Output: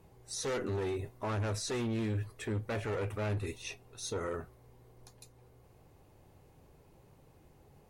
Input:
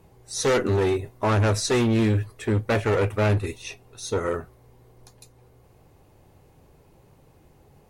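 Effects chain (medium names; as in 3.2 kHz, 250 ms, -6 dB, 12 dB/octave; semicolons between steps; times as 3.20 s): peak limiter -23.5 dBFS, peak gain reduction 9 dB; trim -5.5 dB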